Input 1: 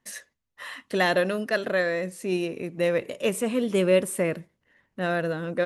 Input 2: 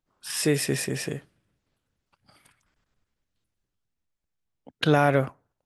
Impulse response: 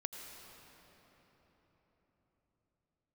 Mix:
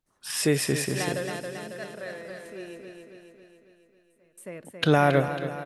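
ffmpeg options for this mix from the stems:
-filter_complex "[0:a]volume=-10dB,asplit=3[link_01][link_02][link_03];[link_01]atrim=end=2.62,asetpts=PTS-STARTPTS,afade=type=out:start_time=2.616:duration=0.004:curve=hsin[link_04];[link_02]atrim=start=2.62:end=4.1,asetpts=PTS-STARTPTS,volume=0[link_05];[link_03]atrim=start=4.1,asetpts=PTS-STARTPTS,afade=type=in:duration=0.004:curve=hsin[link_06];[link_04][link_05][link_06]concat=n=3:v=0:a=1,asplit=2[link_07][link_08];[link_08]volume=-4.5dB[link_09];[1:a]volume=0dB,asplit=3[link_10][link_11][link_12];[link_11]volume=-12dB[link_13];[link_12]apad=whole_len=249367[link_14];[link_07][link_14]sidechaingate=range=-30dB:threshold=-54dB:ratio=16:detection=peak[link_15];[link_09][link_13]amix=inputs=2:normalize=0,aecho=0:1:274|548|822|1096|1370|1644|1918|2192|2466:1|0.58|0.336|0.195|0.113|0.0656|0.0381|0.0221|0.0128[link_16];[link_15][link_10][link_16]amix=inputs=3:normalize=0"

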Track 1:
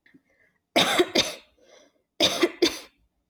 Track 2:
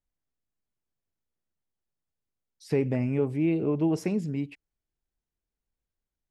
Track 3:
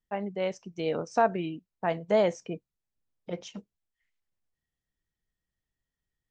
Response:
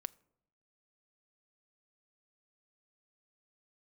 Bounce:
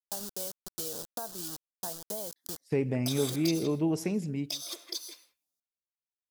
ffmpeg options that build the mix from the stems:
-filter_complex "[0:a]highpass=frequency=830:poles=1,adelay=2300,volume=-15.5dB,asplit=2[link_01][link_02];[link_02]volume=-13dB[link_03];[1:a]agate=range=-33dB:threshold=-39dB:ratio=3:detection=peak,volume=-3dB,asplit=2[link_04][link_05];[link_05]volume=-21.5dB[link_06];[2:a]bandreject=frequency=1300:width=12,acrusher=bits=5:mix=0:aa=0.000001,volume=-7.5dB[link_07];[link_01][link_07]amix=inputs=2:normalize=0,firequalizer=gain_entry='entry(1500,0);entry(2100,-14);entry(3300,4);entry(4800,11)':delay=0.05:min_phase=1,acompressor=threshold=-38dB:ratio=6,volume=0dB[link_08];[link_03][link_06]amix=inputs=2:normalize=0,aecho=0:1:162:1[link_09];[link_04][link_08][link_09]amix=inputs=3:normalize=0,highshelf=frequency=6200:gain=11.5"

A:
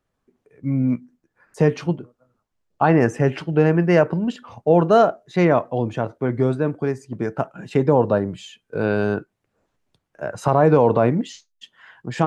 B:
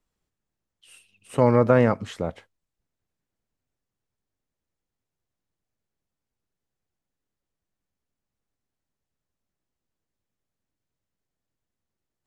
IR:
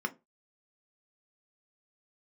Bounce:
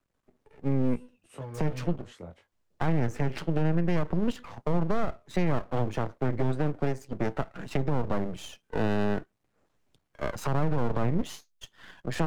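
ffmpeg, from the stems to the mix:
-filter_complex "[0:a]aeval=exprs='max(val(0),0)':channel_layout=same,volume=1dB[link_01];[1:a]acrossover=split=130[link_02][link_03];[link_03]acompressor=threshold=-29dB:ratio=6[link_04];[link_02][link_04]amix=inputs=2:normalize=0,flanger=delay=15.5:depth=7.8:speed=0.26,volume=-8.5dB[link_05];[link_01][link_05]amix=inputs=2:normalize=0,acrossover=split=190[link_06][link_07];[link_07]acompressor=threshold=-26dB:ratio=4[link_08];[link_06][link_08]amix=inputs=2:normalize=0,alimiter=limit=-17dB:level=0:latency=1:release=77"

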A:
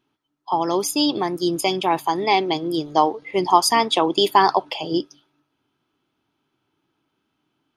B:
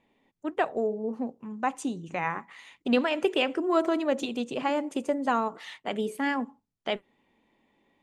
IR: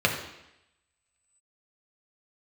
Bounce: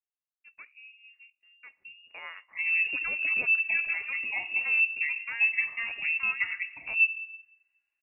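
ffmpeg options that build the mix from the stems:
-filter_complex "[0:a]equalizer=frequency=350:width=3:gain=14.5,asplit=2[link_01][link_02];[link_02]adelay=4.6,afreqshift=0.51[link_03];[link_01][link_03]amix=inputs=2:normalize=1,adelay=2050,volume=-15.5dB,asplit=2[link_04][link_05];[link_05]volume=-19.5dB[link_06];[1:a]agate=range=-18dB:threshold=-59dB:ratio=16:detection=peak,volume=-11dB,afade=type=in:start_time=1.68:duration=0.71:silence=0.251189[link_07];[2:a]atrim=start_sample=2205[link_08];[link_06][link_08]afir=irnorm=-1:irlink=0[link_09];[link_04][link_07][link_09]amix=inputs=3:normalize=0,lowpass=frequency=2600:width_type=q:width=0.5098,lowpass=frequency=2600:width_type=q:width=0.6013,lowpass=frequency=2600:width_type=q:width=0.9,lowpass=frequency=2600:width_type=q:width=2.563,afreqshift=-3000"

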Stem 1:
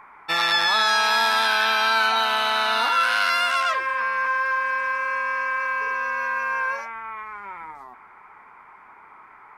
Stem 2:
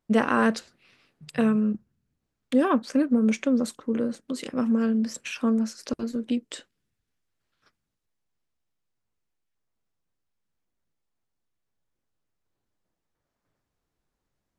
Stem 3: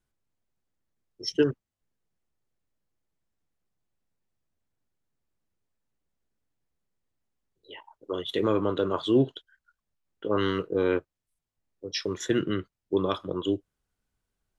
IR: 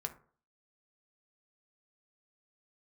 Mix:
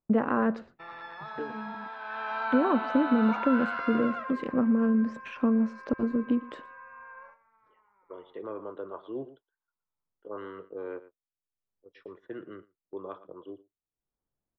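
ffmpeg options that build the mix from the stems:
-filter_complex "[0:a]agate=range=-22dB:threshold=-40dB:ratio=16:detection=peak,adelay=500,volume=-8.5dB,afade=type=in:start_time=1.98:duration=0.36:silence=0.354813,afade=type=out:start_time=3.87:duration=0.72:silence=0.266073,asplit=2[link_01][link_02];[link_02]volume=-8dB[link_03];[1:a]acompressor=threshold=-25dB:ratio=3,volume=3dB,asplit=2[link_04][link_05];[link_05]volume=-21dB[link_06];[2:a]highpass=100,acrossover=split=390 4200:gain=0.251 1 0.2[link_07][link_08][link_09];[link_07][link_08][link_09]amix=inputs=3:normalize=0,dynaudnorm=framelen=140:gausssize=17:maxgain=3.5dB,volume=-13dB,asplit=3[link_10][link_11][link_12];[link_11]volume=-15.5dB[link_13];[link_12]apad=whole_len=643160[link_14];[link_04][link_14]sidechaincompress=threshold=-59dB:ratio=8:attack=6.6:release=467[link_15];[link_03][link_06][link_13]amix=inputs=3:normalize=0,aecho=0:1:116:1[link_16];[link_01][link_15][link_10][link_16]amix=inputs=4:normalize=0,agate=range=-11dB:threshold=-48dB:ratio=16:detection=peak,lowpass=1300"

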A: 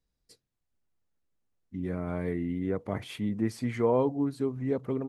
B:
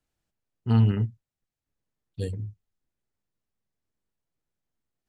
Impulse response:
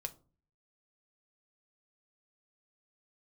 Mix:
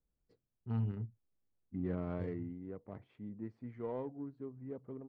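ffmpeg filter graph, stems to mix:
-filter_complex "[0:a]volume=-3.5dB,afade=type=out:start_time=1.9:duration=0.69:silence=0.266073[link_01];[1:a]volume=-15dB[link_02];[link_01][link_02]amix=inputs=2:normalize=0,adynamicsmooth=sensitivity=5:basefreq=1200"

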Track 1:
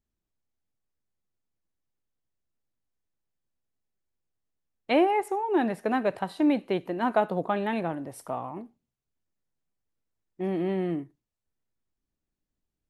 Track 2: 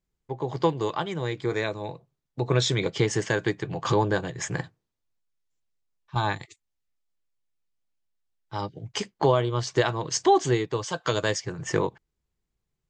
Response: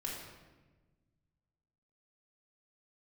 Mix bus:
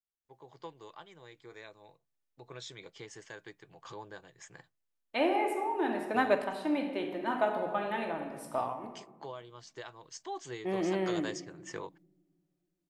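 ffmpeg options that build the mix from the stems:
-filter_complex "[0:a]adelay=250,volume=0dB,asplit=2[link_01][link_02];[link_02]volume=-6dB[link_03];[1:a]volume=-12.5dB,afade=type=in:start_time=10.28:duration=0.31:silence=0.473151,asplit=2[link_04][link_05];[link_05]apad=whole_len=579905[link_06];[link_01][link_06]sidechaingate=range=-11dB:threshold=-56dB:ratio=16:detection=peak[link_07];[2:a]atrim=start_sample=2205[link_08];[link_03][link_08]afir=irnorm=-1:irlink=0[link_09];[link_07][link_04][link_09]amix=inputs=3:normalize=0,lowshelf=frequency=340:gain=-11.5"

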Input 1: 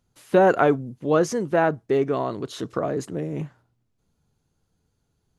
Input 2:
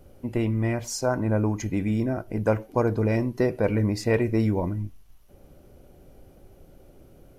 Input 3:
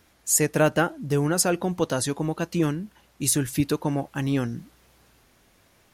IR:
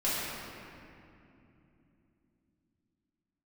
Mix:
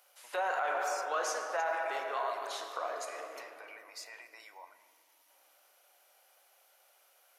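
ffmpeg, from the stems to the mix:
-filter_complex "[0:a]volume=-7dB,asplit=2[link_01][link_02];[link_02]volume=-9dB[link_03];[1:a]highpass=frequency=1400:poles=1,alimiter=level_in=3dB:limit=-24dB:level=0:latency=1:release=18,volume=-3dB,acompressor=threshold=-45dB:ratio=6,volume=1.5dB,asplit=2[link_04][link_05];[link_05]volume=-21dB[link_06];[3:a]atrim=start_sample=2205[link_07];[link_03][link_06]amix=inputs=2:normalize=0[link_08];[link_08][link_07]afir=irnorm=-1:irlink=0[link_09];[link_01][link_04][link_09]amix=inputs=3:normalize=0,highpass=frequency=730:width=0.5412,highpass=frequency=730:width=1.3066,alimiter=limit=-24dB:level=0:latency=1:release=22"

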